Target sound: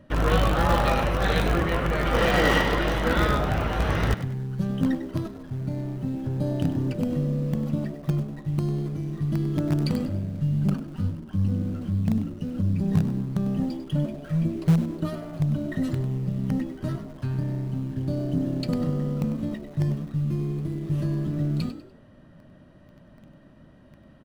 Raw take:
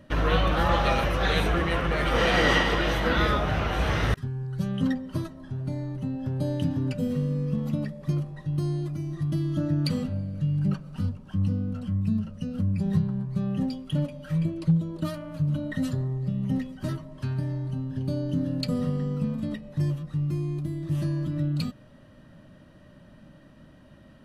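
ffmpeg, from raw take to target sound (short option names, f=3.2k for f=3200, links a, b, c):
-filter_complex "[0:a]highshelf=f=2.2k:g=-6.5,asplit=2[a][b];[b]acrusher=bits=4:dc=4:mix=0:aa=0.000001,volume=-11dB[c];[a][c]amix=inputs=2:normalize=0,asplit=4[d][e][f][g];[e]adelay=98,afreqshift=68,volume=-12dB[h];[f]adelay=196,afreqshift=136,volume=-21.6dB[i];[g]adelay=294,afreqshift=204,volume=-31.3dB[j];[d][h][i][j]amix=inputs=4:normalize=0"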